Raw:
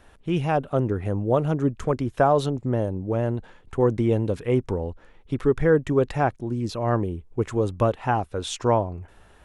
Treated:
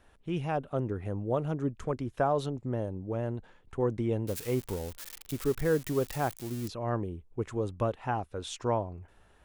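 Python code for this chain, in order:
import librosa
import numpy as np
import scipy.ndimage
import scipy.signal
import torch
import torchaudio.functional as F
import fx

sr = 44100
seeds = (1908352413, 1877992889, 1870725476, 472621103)

y = fx.crossing_spikes(x, sr, level_db=-21.0, at=(4.27, 6.68))
y = y * 10.0 ** (-8.5 / 20.0)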